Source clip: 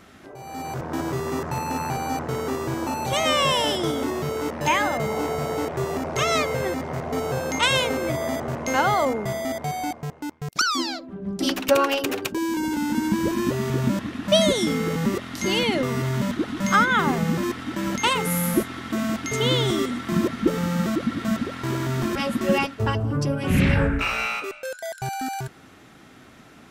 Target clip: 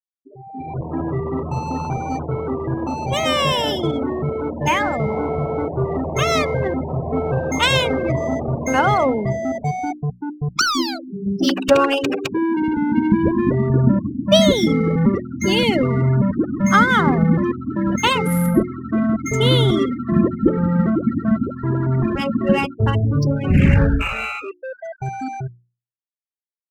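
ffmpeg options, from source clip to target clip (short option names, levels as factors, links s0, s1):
-af "highshelf=f=4800:g=2.5,afftfilt=real='re*gte(hypot(re,im),0.0562)':imag='im*gte(hypot(re,im),0.0562)':win_size=1024:overlap=0.75,dynaudnorm=f=540:g=21:m=1.58,bandreject=f=60:t=h:w=6,bandreject=f=120:t=h:w=6,bandreject=f=180:t=h:w=6,bandreject=f=240:t=h:w=6,bandreject=f=300:t=h:w=6,bandreject=f=360:t=h:w=6,adynamicsmooth=sensitivity=5:basefreq=4600,lowshelf=f=250:g=8,volume=1.12"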